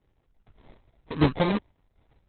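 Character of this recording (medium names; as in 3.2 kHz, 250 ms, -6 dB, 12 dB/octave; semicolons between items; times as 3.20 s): phasing stages 4, 1.9 Hz, lowest notch 270–1300 Hz; random-step tremolo 4.1 Hz; aliases and images of a low sample rate 1.4 kHz, jitter 0%; Opus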